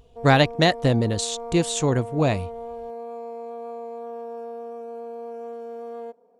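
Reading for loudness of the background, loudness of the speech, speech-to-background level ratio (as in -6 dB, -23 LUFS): -36.0 LUFS, -21.5 LUFS, 14.5 dB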